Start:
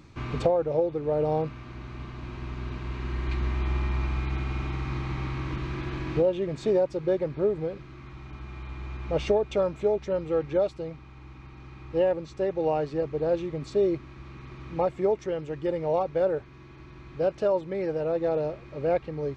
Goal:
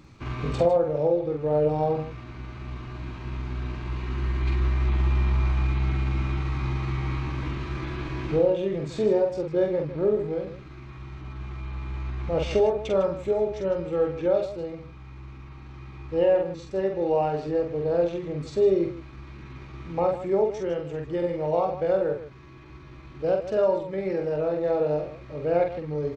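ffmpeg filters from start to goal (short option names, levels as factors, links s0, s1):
-filter_complex "[0:a]atempo=0.74,asplit=2[s0][s1];[s1]aecho=0:1:46.65|154.5:0.631|0.251[s2];[s0][s2]amix=inputs=2:normalize=0"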